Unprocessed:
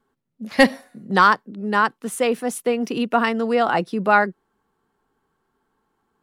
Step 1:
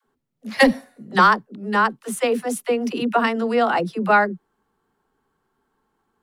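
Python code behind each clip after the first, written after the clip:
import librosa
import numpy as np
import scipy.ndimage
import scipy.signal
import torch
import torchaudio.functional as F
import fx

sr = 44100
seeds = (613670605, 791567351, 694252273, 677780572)

y = fx.dispersion(x, sr, late='lows', ms=67.0, hz=320.0)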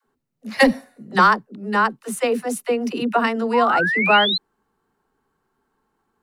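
y = fx.notch(x, sr, hz=3300.0, q=14.0)
y = fx.spec_paint(y, sr, seeds[0], shape='rise', start_s=3.53, length_s=0.85, low_hz=910.0, high_hz=4200.0, level_db=-21.0)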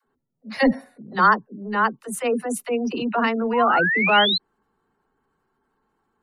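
y = fx.spec_gate(x, sr, threshold_db=-30, keep='strong')
y = fx.transient(y, sr, attack_db=-8, sustain_db=0)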